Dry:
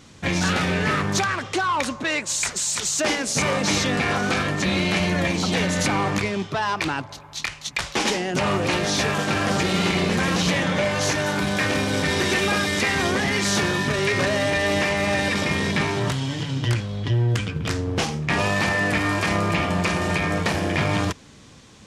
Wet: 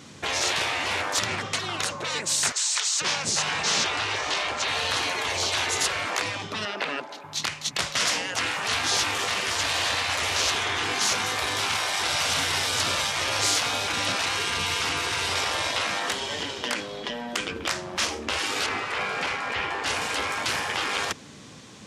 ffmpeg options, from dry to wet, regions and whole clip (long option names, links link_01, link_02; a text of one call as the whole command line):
ffmpeg -i in.wav -filter_complex "[0:a]asettb=1/sr,asplit=3[link_01][link_02][link_03];[link_01]atrim=end=2.524[link_04];[link_02]atrim=start=2.52:end=4.68,asetpts=PTS-STARTPTS,afade=type=in:duration=0.004:curve=qsin,afade=type=out:start_time=2.156:duration=0.004:curve=qsin,lowpass=7000,lowshelf=frequency=350:gain=4,acrossover=split=710[link_05][link_06];[link_05]adelay=490[link_07];[link_07][link_06]amix=inputs=2:normalize=0,atrim=end_sample=95256[link_08];[link_03]atrim=start=4.676[link_09];[link_04][link_08]acrossfade=duration=0.004:curve1=hsin:curve2=qsin[link_10];[link_10][link_09]acrossfade=duration=0.004:curve1=qsin:curve2=hsin,asettb=1/sr,asplit=3[link_11][link_12][link_13];[link_11]atrim=end=6.654[link_14];[link_12]atrim=start=6.65:end=7.24,asetpts=PTS-STARTPTS,afade=type=in:duration=0.004:curve=qsin,afade=type=out:start_time=0.586:duration=0.004:curve=qsin,acrossover=split=3500[link_15][link_16];[link_16]acompressor=threshold=-49dB:ratio=4:attack=1:release=60[link_17];[link_15][link_17]amix=inputs=2:normalize=0,highpass=frequency=270:width=0.5412,highpass=frequency=270:width=1.3066,bandreject=frequency=1100:width=8[link_18];[link_13]atrim=start=7.236[link_19];[link_14][link_18]acrossfade=duration=0.004:curve1=hsin:curve2=qsin[link_20];[link_20][link_19]acrossfade=duration=0.004:curve1=qsin:curve2=hsin,asettb=1/sr,asplit=3[link_21][link_22][link_23];[link_21]atrim=end=18.664[link_24];[link_22]atrim=start=18.66:end=19.86,asetpts=PTS-STARTPTS,afade=type=in:duration=0.004:curve=qsin,afade=type=out:start_time=1.196:duration=0.004:curve=qsin,aemphasis=mode=reproduction:type=75fm,bandreject=frequency=910:width=16[link_25];[link_23]atrim=start=19.856[link_26];[link_24][link_25]acrossfade=duration=0.004:curve1=hsin:curve2=qsin[link_27];[link_27][link_26]acrossfade=duration=0.004:curve1=qsin:curve2=hsin,highpass=120,afftfilt=real='re*lt(hypot(re,im),0.141)':imag='im*lt(hypot(re,im),0.141)':win_size=1024:overlap=0.75,volume=3dB" out.wav